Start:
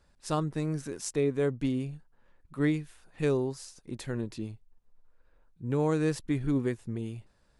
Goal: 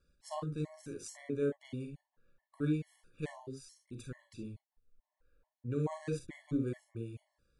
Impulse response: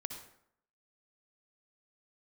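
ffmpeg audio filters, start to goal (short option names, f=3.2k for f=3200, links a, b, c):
-filter_complex "[0:a]asettb=1/sr,asplit=3[a][b][c];[a]atrim=end=3.434[d];[b]atrim=start=3.43:end=4.39,asetpts=PTS-STARTPTS,afade=t=in:d=0.004:c=qsin,afade=t=out:st=0.956:d=0.004:c=qsin,equalizer=f=730:t=o:w=0.82:g=-15[e];[c]atrim=start=4.386[f];[d][e]acrossfade=d=0.004:c1=hsin:c2=qsin[g];[g][f]acrossfade=d=0.004:c1=qsin:c2=hsin[h];[1:a]atrim=start_sample=2205,afade=t=out:st=0.18:d=0.01,atrim=end_sample=8379,asetrate=79380,aresample=44100[i];[h][i]afir=irnorm=-1:irlink=0,afftfilt=real='re*gt(sin(2*PI*2.3*pts/sr)*(1-2*mod(floor(b*sr/1024/570),2)),0)':imag='im*gt(sin(2*PI*2.3*pts/sr)*(1-2*mod(floor(b*sr/1024/570),2)),0)':win_size=1024:overlap=0.75"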